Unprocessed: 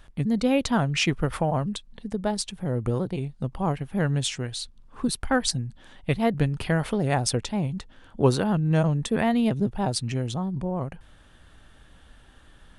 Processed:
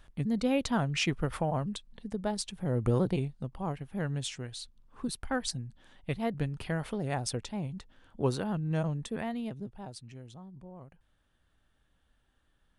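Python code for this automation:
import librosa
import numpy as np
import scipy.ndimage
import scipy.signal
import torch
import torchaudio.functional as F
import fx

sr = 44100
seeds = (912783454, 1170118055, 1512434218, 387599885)

y = fx.gain(x, sr, db=fx.line((2.45, -6.0), (3.11, 1.0), (3.47, -9.0), (8.9, -9.0), (10.03, -19.5)))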